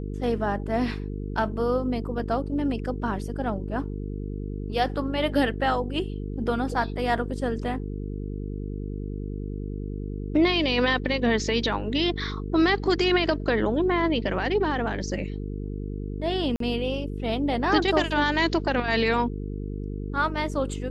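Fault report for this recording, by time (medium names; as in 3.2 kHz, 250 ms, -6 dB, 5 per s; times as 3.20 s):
buzz 50 Hz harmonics 9 -32 dBFS
16.56–16.60 s: dropout 43 ms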